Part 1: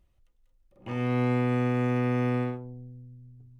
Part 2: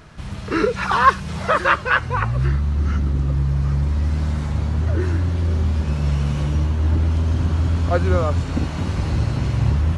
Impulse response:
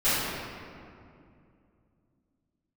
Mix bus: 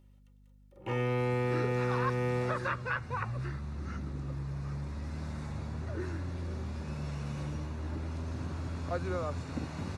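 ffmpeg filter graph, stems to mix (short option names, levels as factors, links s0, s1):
-filter_complex "[0:a]aecho=1:1:2.2:0.59,volume=1.26[s0];[1:a]bandreject=f=3100:w=6.2,adelay=1000,volume=0.251[s1];[s0][s1]amix=inputs=2:normalize=0,acrossover=split=240|2800[s2][s3][s4];[s2]acompressor=threshold=0.0251:ratio=4[s5];[s3]acompressor=threshold=0.0282:ratio=4[s6];[s4]acompressor=threshold=0.00316:ratio=4[s7];[s5][s6][s7]amix=inputs=3:normalize=0,highpass=90,aeval=exprs='val(0)+0.00126*(sin(2*PI*50*n/s)+sin(2*PI*2*50*n/s)/2+sin(2*PI*3*50*n/s)/3+sin(2*PI*4*50*n/s)/4+sin(2*PI*5*50*n/s)/5)':c=same"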